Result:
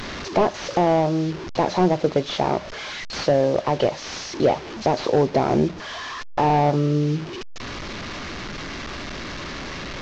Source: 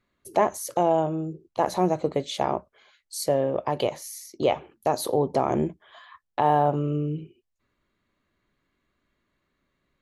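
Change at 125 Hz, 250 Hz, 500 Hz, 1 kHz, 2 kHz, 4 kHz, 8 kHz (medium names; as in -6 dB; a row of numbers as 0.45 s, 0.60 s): +6.5 dB, +6.0 dB, +4.0 dB, +2.5 dB, +9.5 dB, +8.0 dB, -0.5 dB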